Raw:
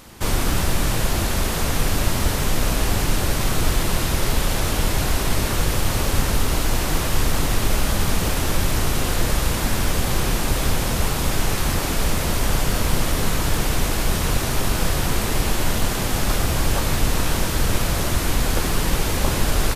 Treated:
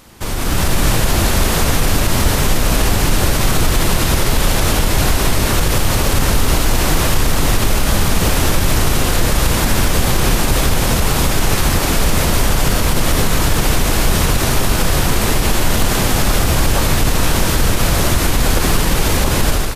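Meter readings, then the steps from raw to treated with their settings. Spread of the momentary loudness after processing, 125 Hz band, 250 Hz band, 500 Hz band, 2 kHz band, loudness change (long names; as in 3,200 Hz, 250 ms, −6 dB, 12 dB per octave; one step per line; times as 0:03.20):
1 LU, +6.5 dB, +6.5 dB, +6.5 dB, +6.5 dB, +6.5 dB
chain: brickwall limiter −12 dBFS, peak gain reduction 7 dB
automatic gain control gain up to 9 dB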